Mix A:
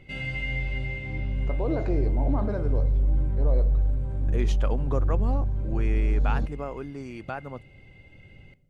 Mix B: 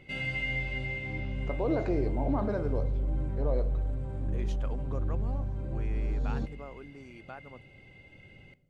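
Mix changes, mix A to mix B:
second voice −10.5 dB
master: add low-shelf EQ 97 Hz −10 dB

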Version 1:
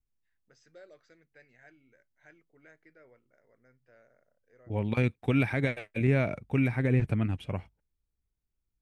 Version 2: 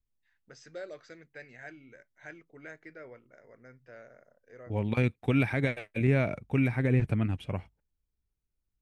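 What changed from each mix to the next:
first voice +11.0 dB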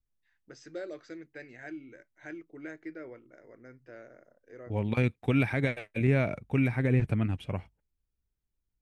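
first voice: add parametric band 320 Hz +11.5 dB 0.49 octaves

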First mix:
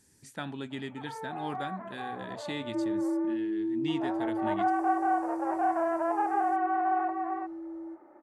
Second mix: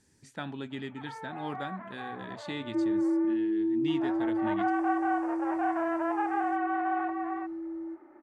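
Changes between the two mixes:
first sound: add tilt shelving filter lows −9 dB, about 1,100 Hz
second sound +3.0 dB
master: add high-frequency loss of the air 55 metres

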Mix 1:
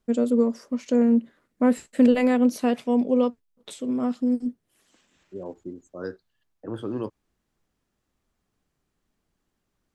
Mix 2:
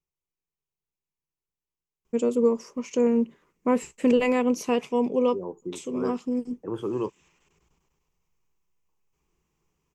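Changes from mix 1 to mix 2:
first voice: entry +2.05 s
master: add EQ curve with evenly spaced ripples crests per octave 0.75, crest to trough 10 dB

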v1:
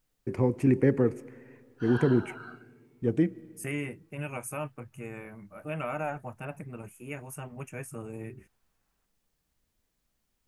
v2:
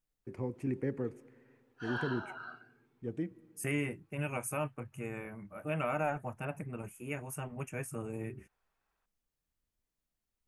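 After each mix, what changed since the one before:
first voice −12.0 dB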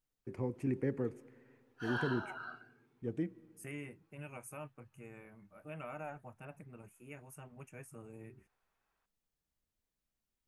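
second voice −11.5 dB
background: remove low-pass filter 7,000 Hz

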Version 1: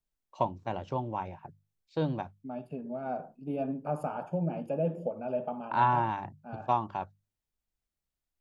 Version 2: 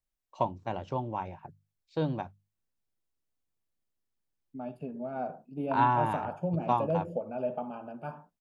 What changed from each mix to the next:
second voice: entry +2.10 s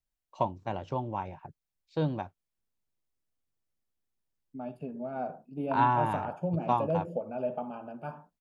first voice: remove mains-hum notches 50/100/150/200 Hz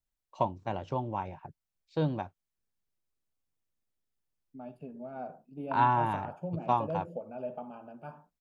second voice −5.5 dB

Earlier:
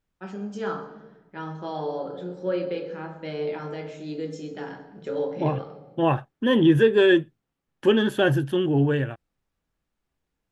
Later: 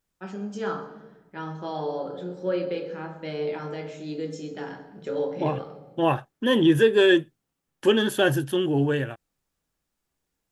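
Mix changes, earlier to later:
second voice: add bass and treble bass −4 dB, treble +6 dB
master: add high-shelf EQ 6,900 Hz +5.5 dB

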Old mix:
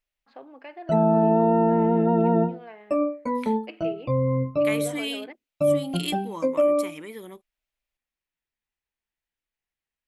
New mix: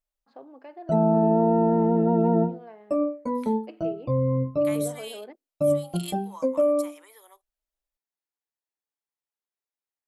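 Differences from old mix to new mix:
second voice: add high-pass filter 710 Hz 24 dB per octave
master: add parametric band 2,400 Hz −12.5 dB 1.5 octaves

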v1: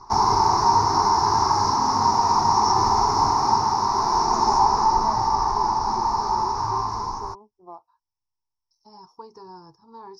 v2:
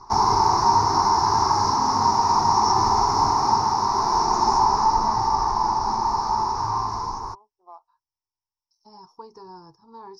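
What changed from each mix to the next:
first voice: add high-pass filter 810 Hz 12 dB per octave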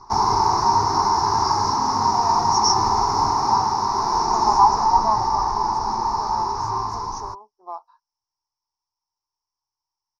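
first voice +11.0 dB
second voice: entry +1.75 s

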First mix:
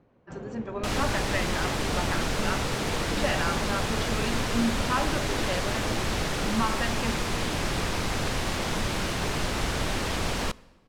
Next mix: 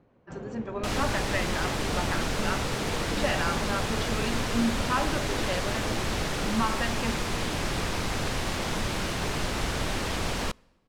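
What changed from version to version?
second sound: send −8.0 dB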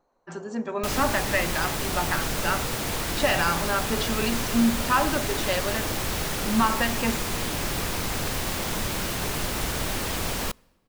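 speech +5.5 dB
first sound: add resonant band-pass 910 Hz, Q 1.6
master: remove high-frequency loss of the air 56 metres

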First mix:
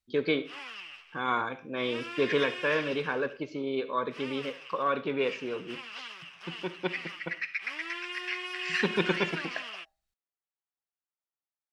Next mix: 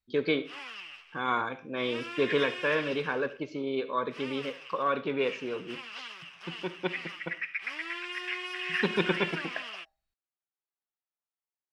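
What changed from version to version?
second voice: add Savitzky-Golay smoothing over 25 samples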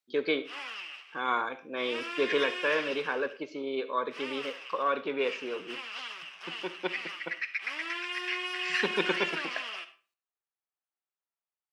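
second voice: remove Savitzky-Golay smoothing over 25 samples
background: send on
master: add high-pass filter 300 Hz 12 dB per octave

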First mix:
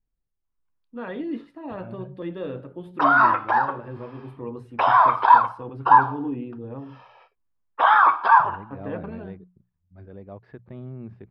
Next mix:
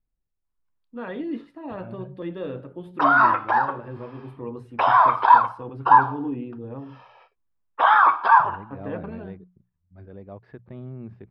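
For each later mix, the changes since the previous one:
nothing changed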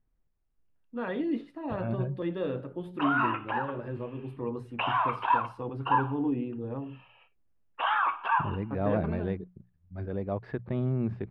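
second voice +8.5 dB
background: add transistor ladder low-pass 2,900 Hz, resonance 85%

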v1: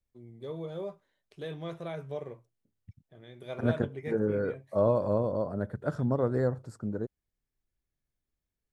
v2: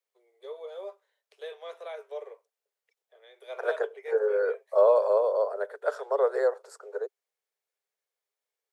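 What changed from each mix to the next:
second voice +6.0 dB
master: add Butterworth high-pass 410 Hz 96 dB per octave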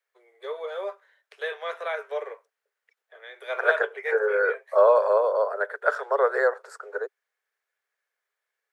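first voice +5.0 dB
master: add parametric band 1,600 Hz +13.5 dB 1.3 octaves

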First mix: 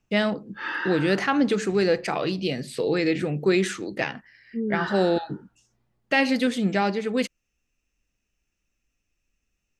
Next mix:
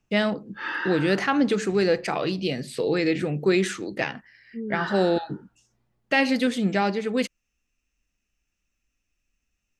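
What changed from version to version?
second voice −5.0 dB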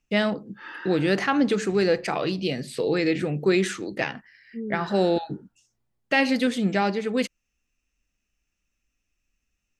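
background −9.5 dB

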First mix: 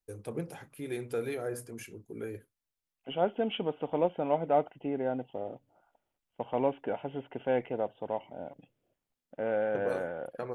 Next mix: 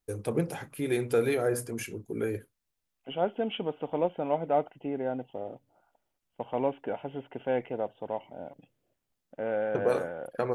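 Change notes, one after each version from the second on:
first voice +8.0 dB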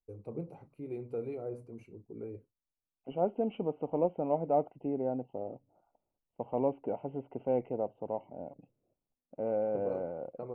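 first voice −10.5 dB
master: add moving average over 26 samples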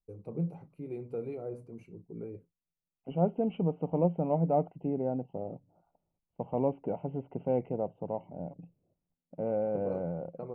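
second voice: add parametric band 66 Hz +9 dB 2 octaves
master: add parametric band 170 Hz +12.5 dB 0.26 octaves

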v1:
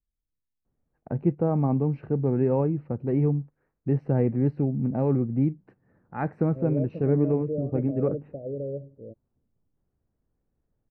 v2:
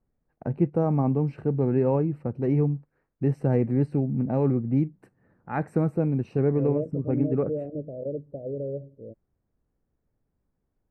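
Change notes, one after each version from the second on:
first voice: entry −0.65 s
master: remove high-frequency loss of the air 270 metres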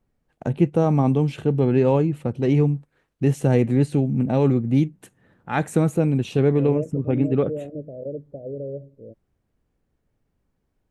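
first voice +4.5 dB
master: remove moving average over 13 samples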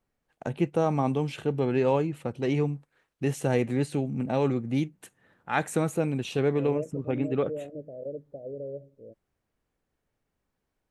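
master: add low-shelf EQ 420 Hz −11 dB

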